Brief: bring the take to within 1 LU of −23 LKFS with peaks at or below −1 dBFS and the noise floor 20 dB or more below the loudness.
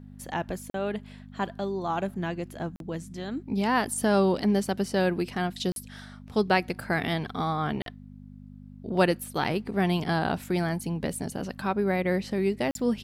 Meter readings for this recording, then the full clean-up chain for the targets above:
number of dropouts 5; longest dropout 42 ms; mains hum 50 Hz; hum harmonics up to 250 Hz; level of the hum −45 dBFS; integrated loudness −28.5 LKFS; sample peak −9.5 dBFS; target loudness −23.0 LKFS
→ repair the gap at 0:00.70/0:02.76/0:05.72/0:07.82/0:12.71, 42 ms
hum removal 50 Hz, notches 5
level +5.5 dB

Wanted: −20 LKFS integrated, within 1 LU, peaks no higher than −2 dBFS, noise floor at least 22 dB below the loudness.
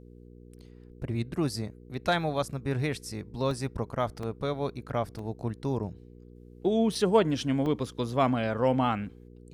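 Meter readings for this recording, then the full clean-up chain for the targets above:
number of dropouts 5; longest dropout 2.9 ms; mains hum 60 Hz; hum harmonics up to 480 Hz; level of the hum −51 dBFS; integrated loudness −30.0 LKFS; sample peak −10.5 dBFS; target loudness −20.0 LKFS
→ repair the gap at 0:03.51/0:04.23/0:05.19/0:06.95/0:07.66, 2.9 ms
hum removal 60 Hz, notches 8
level +10 dB
brickwall limiter −2 dBFS

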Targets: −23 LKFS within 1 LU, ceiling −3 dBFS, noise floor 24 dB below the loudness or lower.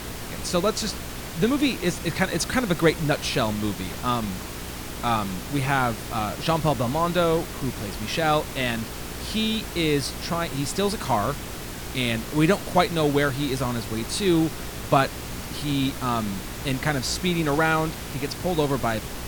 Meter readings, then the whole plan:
mains hum 60 Hz; hum harmonics up to 420 Hz; level of the hum −37 dBFS; background noise floor −35 dBFS; target noise floor −49 dBFS; integrated loudness −25.0 LKFS; sample peak −5.5 dBFS; target loudness −23.0 LKFS
→ hum removal 60 Hz, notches 7
noise reduction from a noise print 14 dB
level +2 dB

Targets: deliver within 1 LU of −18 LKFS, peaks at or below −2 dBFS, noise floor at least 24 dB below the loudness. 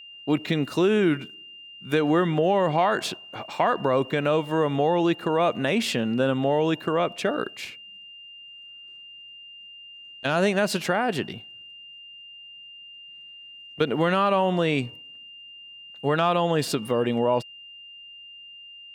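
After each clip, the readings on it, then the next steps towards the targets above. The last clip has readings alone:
interfering tone 2,800 Hz; level of the tone −42 dBFS; integrated loudness −24.0 LKFS; sample peak −9.5 dBFS; target loudness −18.0 LKFS
→ notch filter 2,800 Hz, Q 30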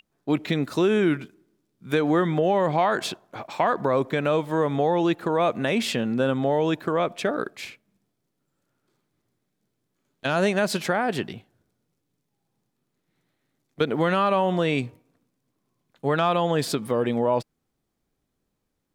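interfering tone none found; integrated loudness −24.0 LKFS; sample peak −9.5 dBFS; target loudness −18.0 LKFS
→ level +6 dB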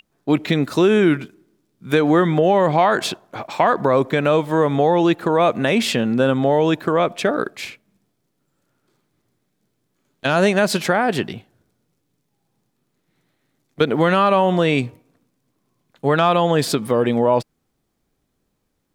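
integrated loudness −18.0 LKFS; sample peak −3.5 dBFS; background noise floor −72 dBFS

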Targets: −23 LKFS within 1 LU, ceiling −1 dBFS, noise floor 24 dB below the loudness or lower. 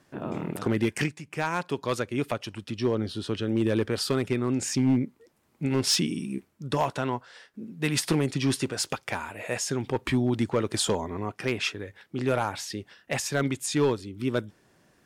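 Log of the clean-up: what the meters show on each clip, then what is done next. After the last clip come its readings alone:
share of clipped samples 0.6%; peaks flattened at −16.5 dBFS; integrated loudness −28.5 LKFS; sample peak −16.5 dBFS; target loudness −23.0 LKFS
→ clipped peaks rebuilt −16.5 dBFS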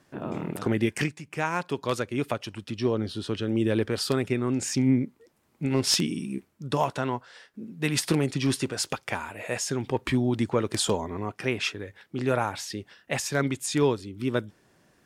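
share of clipped samples 0.0%; integrated loudness −28.0 LKFS; sample peak −7.5 dBFS; target loudness −23.0 LKFS
→ level +5 dB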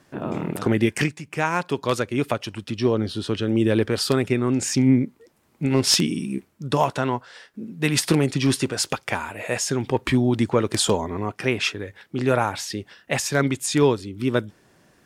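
integrated loudness −23.0 LKFS; sample peak −2.5 dBFS; background noise floor −60 dBFS

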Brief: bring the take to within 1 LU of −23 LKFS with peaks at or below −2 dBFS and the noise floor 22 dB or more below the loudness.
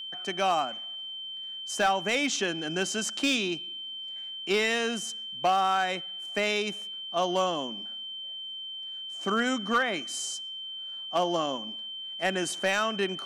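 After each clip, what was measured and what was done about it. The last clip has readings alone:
share of clipped samples 0.4%; peaks flattened at −18.0 dBFS; interfering tone 3,100 Hz; level of the tone −36 dBFS; integrated loudness −29.0 LKFS; sample peak −18.0 dBFS; target loudness −23.0 LKFS
→ clipped peaks rebuilt −18 dBFS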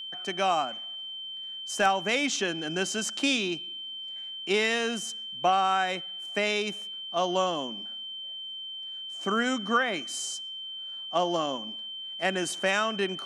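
share of clipped samples 0.0%; interfering tone 3,100 Hz; level of the tone −36 dBFS
→ notch filter 3,100 Hz, Q 30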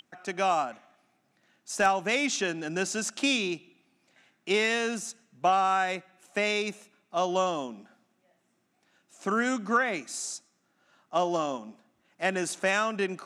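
interfering tone none found; integrated loudness −28.5 LKFS; sample peak −11.0 dBFS; target loudness −23.0 LKFS
→ level +5.5 dB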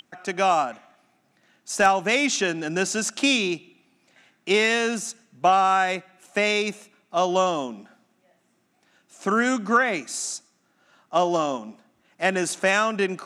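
integrated loudness −23.0 LKFS; sample peak −5.5 dBFS; background noise floor −67 dBFS

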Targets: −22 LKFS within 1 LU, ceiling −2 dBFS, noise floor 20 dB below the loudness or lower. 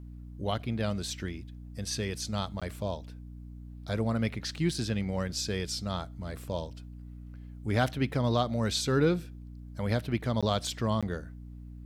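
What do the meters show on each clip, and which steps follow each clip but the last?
number of dropouts 3; longest dropout 16 ms; mains hum 60 Hz; hum harmonics up to 300 Hz; level of the hum −42 dBFS; integrated loudness −31.5 LKFS; sample peak −11.5 dBFS; target loudness −22.0 LKFS
→ repair the gap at 0:02.60/0:10.41/0:11.01, 16 ms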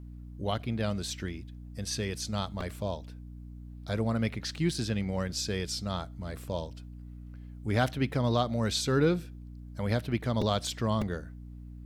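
number of dropouts 0; mains hum 60 Hz; hum harmonics up to 300 Hz; level of the hum −42 dBFS
→ hum removal 60 Hz, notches 5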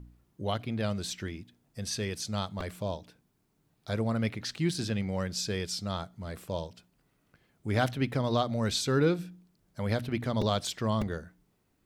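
mains hum none found; integrated loudness −32.0 LKFS; sample peak −12.5 dBFS; target loudness −22.0 LKFS
→ level +10 dB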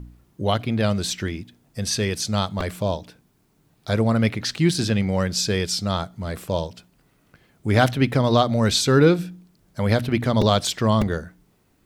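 integrated loudness −22.0 LKFS; sample peak −2.5 dBFS; background noise floor −63 dBFS

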